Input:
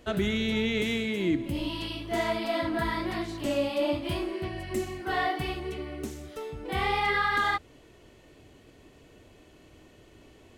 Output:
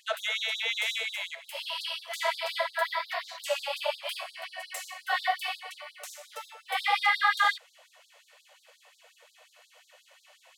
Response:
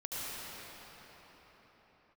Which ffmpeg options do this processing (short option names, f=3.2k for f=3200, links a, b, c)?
-filter_complex "[0:a]asettb=1/sr,asplit=3[a][b][c];[a]atrim=end=2.814[d];[b]atrim=start=2.81:end=3.42,asetpts=PTS-STARTPTS,afade=t=in:d=0.004:c=qsin,afade=t=out:st=0.606:d=0.004:c=qsin,equalizer=f=9k:w=1.3:g=-9.5[e];[c]atrim=start=3.416[f];[d][e]acrossfade=d=0.004:c1=hsin:c2=qsin[g];[g][f]acrossfade=d=0.004:c1=qsin:c2=hsin,afftfilt=real='re*gte(b*sr/1024,460*pow(3700/460,0.5+0.5*sin(2*PI*5.6*pts/sr)))':imag='im*gte(b*sr/1024,460*pow(3700/460,0.5+0.5*sin(2*PI*5.6*pts/sr)))':win_size=1024:overlap=0.75,volume=4.5dB"